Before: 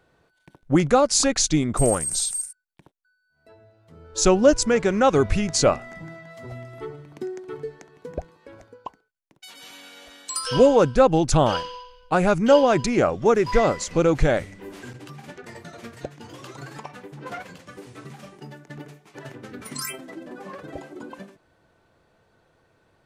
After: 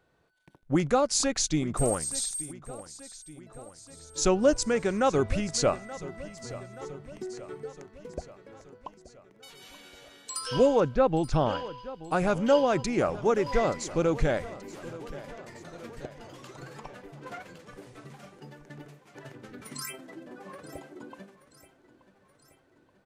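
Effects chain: 10.80–11.78 s: distance through air 180 m; feedback delay 878 ms, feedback 59%, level -17 dB; trim -6.5 dB

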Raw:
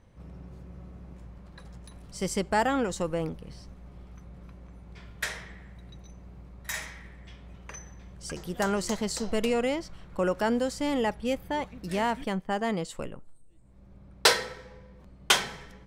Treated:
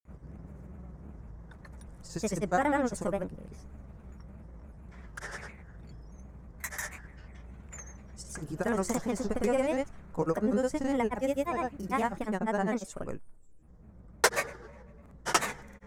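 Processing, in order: high-order bell 3.5 kHz -10.5 dB 1.2 oct; granulator, grains 20 per s, pitch spread up and down by 3 st

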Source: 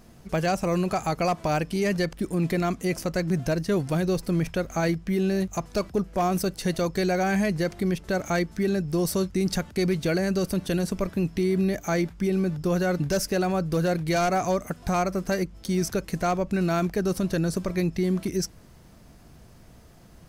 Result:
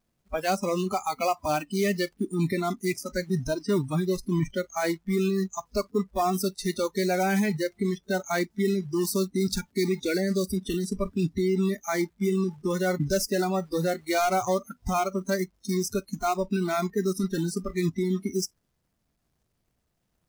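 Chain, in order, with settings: companded quantiser 4-bit; spectral noise reduction 26 dB

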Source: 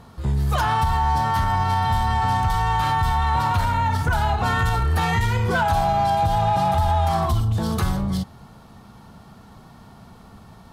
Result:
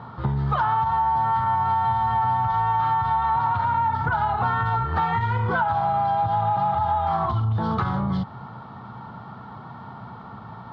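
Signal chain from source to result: cabinet simulation 110–3500 Hz, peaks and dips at 120 Hz +9 dB, 900 Hz +9 dB, 1.3 kHz +9 dB, 2.6 kHz -7 dB; compression 6:1, threshold -24 dBFS, peak gain reduction 13.5 dB; trim +3.5 dB

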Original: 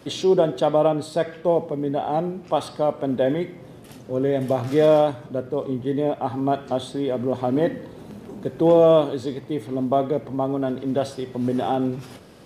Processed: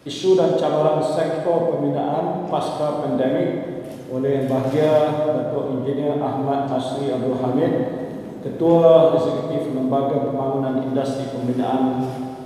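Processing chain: plate-style reverb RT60 2.3 s, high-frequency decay 0.65×, DRR -1.5 dB; trim -1.5 dB

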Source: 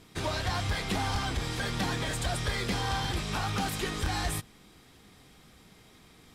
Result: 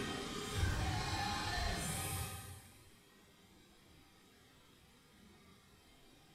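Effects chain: chord resonator C2 major, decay 0.37 s; Paulstretch 4.5×, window 0.05 s, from 3.90 s; trim +4 dB

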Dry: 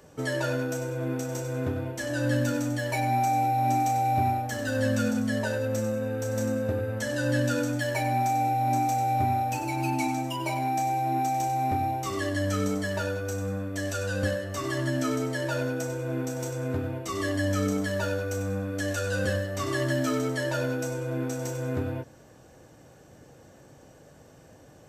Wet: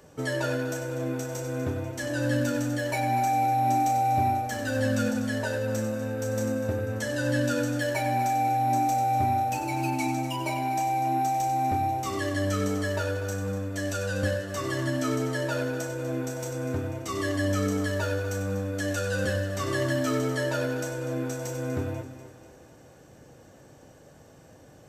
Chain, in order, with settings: two-band feedback delay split 320 Hz, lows 124 ms, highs 245 ms, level -12.5 dB

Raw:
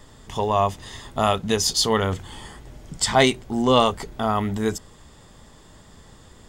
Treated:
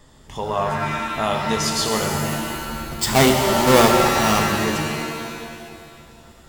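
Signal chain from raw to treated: 2.48–4.43 s: square wave that keeps the level; pitch-shifted reverb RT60 2 s, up +7 st, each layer -2 dB, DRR 3 dB; trim -3.5 dB

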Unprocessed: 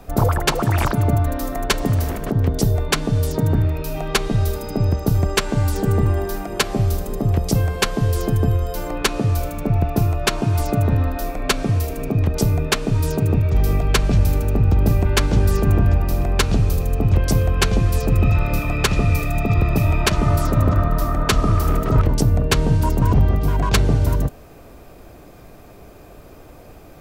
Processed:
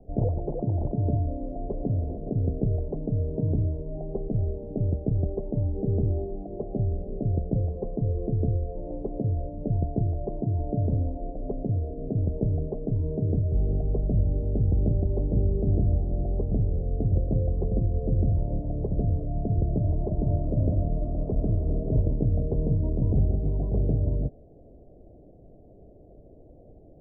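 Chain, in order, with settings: steep low-pass 670 Hz 48 dB/octave; trim -7.5 dB

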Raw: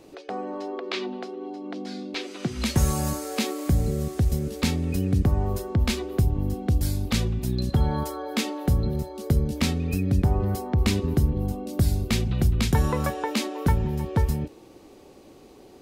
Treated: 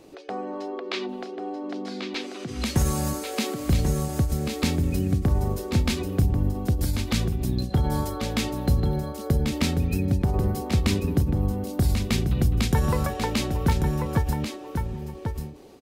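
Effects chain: delay 1090 ms -6.5 dB; endings held to a fixed fall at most 120 dB/s

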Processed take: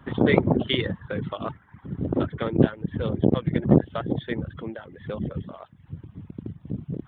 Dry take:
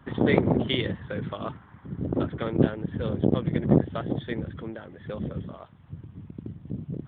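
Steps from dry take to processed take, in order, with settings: reverb removal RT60 0.6 s; trim +3 dB

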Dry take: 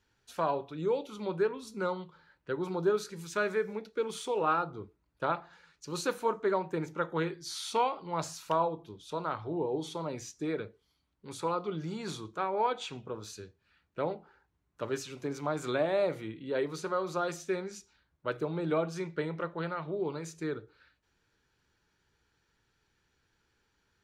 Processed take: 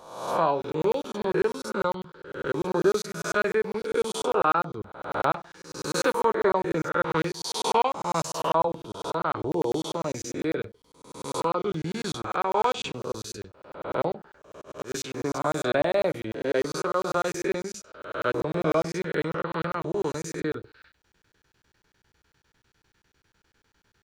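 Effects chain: reverse spectral sustain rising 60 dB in 0.81 s; 14.09–14.95 s: slow attack 182 ms; crackling interface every 0.10 s, samples 1024, zero, from 0.62 s; trim +5 dB

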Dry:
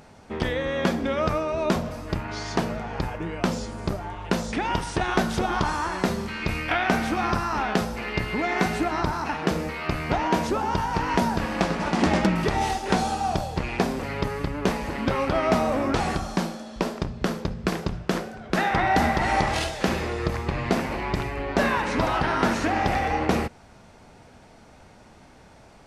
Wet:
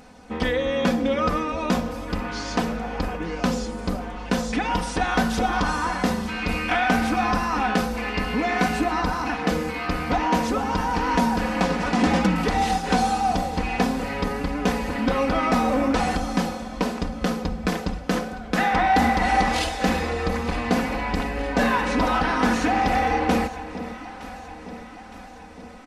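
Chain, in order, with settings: comb 4 ms, depth 88%; saturation -10 dBFS, distortion -21 dB; on a send: echo whose repeats swap between lows and highs 457 ms, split 930 Hz, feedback 74%, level -12.5 dB

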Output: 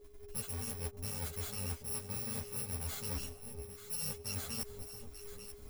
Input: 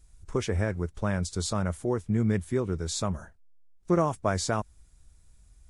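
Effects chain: bit-reversed sample order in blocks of 128 samples; gate -54 dBFS, range -9 dB; reverse; compression 12:1, threshold -38 dBFS, peak gain reduction 19 dB; reverse; whistle 410 Hz -57 dBFS; on a send: echo whose repeats swap between lows and highs 444 ms, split 910 Hz, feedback 70%, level -8 dB; on the sum: three-phase chorus; trim +5 dB

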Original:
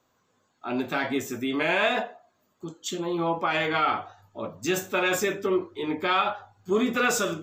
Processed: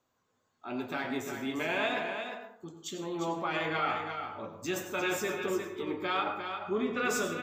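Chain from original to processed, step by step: 6.23–7.04 s: low-pass 1.7 kHz -> 4.3 kHz 12 dB/octave; delay 351 ms -7 dB; plate-style reverb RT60 0.59 s, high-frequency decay 0.5×, pre-delay 80 ms, DRR 7 dB; trim -8 dB

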